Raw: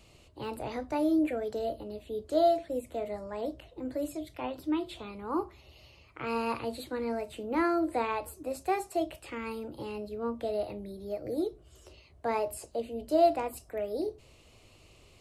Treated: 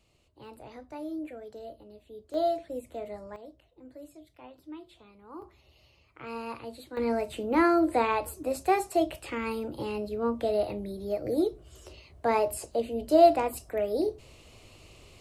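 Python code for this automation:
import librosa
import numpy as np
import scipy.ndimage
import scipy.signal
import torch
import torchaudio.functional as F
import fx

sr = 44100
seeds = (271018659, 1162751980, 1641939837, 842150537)

y = fx.gain(x, sr, db=fx.steps((0.0, -10.0), (2.34, -3.0), (3.36, -13.0), (5.42, -6.0), (6.97, 5.0)))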